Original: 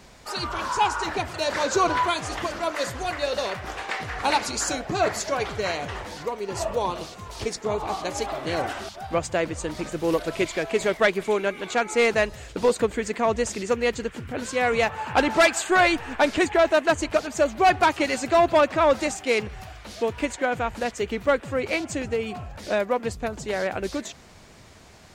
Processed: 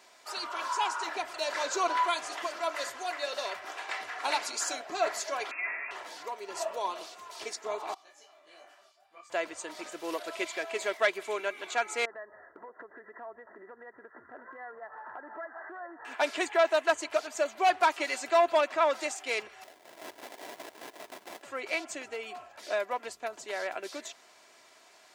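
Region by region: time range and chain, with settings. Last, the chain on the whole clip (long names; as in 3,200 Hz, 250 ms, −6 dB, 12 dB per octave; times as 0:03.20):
0:05.51–0:05.91: linear delta modulator 32 kbit/s, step −42 dBFS + voice inversion scrambler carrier 2,600 Hz
0:07.94–0:09.30: notch filter 570 Hz, Q 11 + tuned comb filter 590 Hz, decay 0.34 s, mix 90% + micro pitch shift up and down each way 49 cents
0:12.05–0:16.05: linear-phase brick-wall low-pass 2,000 Hz + downward compressor 12 to 1, threshold −32 dBFS
0:19.64–0:21.43: low-shelf EQ 350 Hz −7 dB + sample-rate reduction 1,300 Hz, jitter 20% + wrap-around overflow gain 28 dB
whole clip: high-pass filter 570 Hz 12 dB per octave; comb filter 3 ms, depth 39%; level −6 dB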